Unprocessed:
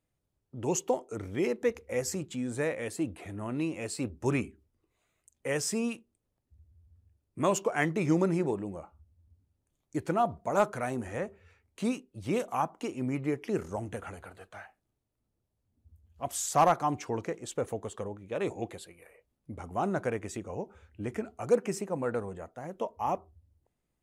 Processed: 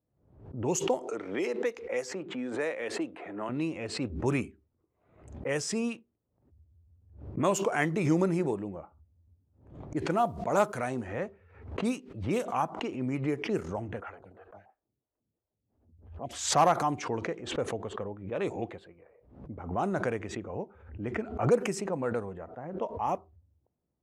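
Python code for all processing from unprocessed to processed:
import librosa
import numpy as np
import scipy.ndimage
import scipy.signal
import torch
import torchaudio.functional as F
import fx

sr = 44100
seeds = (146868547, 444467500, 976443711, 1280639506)

y = fx.chain(x, sr, fx.highpass(hz=350.0, slope=12),
    fx.band_squash(depth_pct=70), at=(1.07, 3.49))
y = fx.chain(y, sr, fx.high_shelf(hz=4200.0, db=2.5),
    fx.quant_companded(bits=8), at=(9.98, 12.38))
y = fx.chain(y, sr, fx.peak_eq(hz=8300.0, db=10.5, octaves=2.8),
    fx.stagger_phaser(hz=3.0), at=(14.0, 16.33))
y = scipy.signal.sosfilt(scipy.signal.butter(2, 63.0, 'highpass', fs=sr, output='sos'), y)
y = fx.env_lowpass(y, sr, base_hz=840.0, full_db=-25.0)
y = fx.pre_swell(y, sr, db_per_s=91.0)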